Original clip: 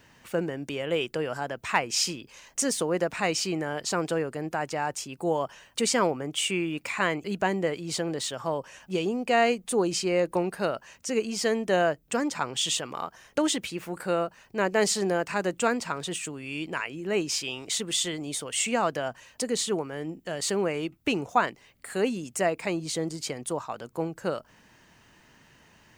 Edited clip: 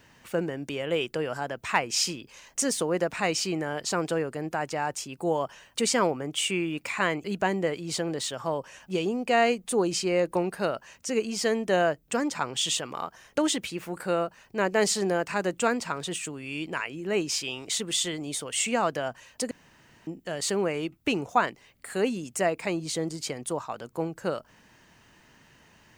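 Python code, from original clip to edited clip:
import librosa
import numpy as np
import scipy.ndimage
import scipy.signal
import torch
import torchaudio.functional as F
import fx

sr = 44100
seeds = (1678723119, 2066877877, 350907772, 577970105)

y = fx.edit(x, sr, fx.room_tone_fill(start_s=19.51, length_s=0.56), tone=tone)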